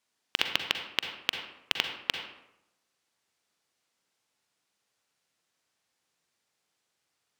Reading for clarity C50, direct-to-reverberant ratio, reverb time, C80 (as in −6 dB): 6.0 dB, 5.0 dB, 0.85 s, 8.0 dB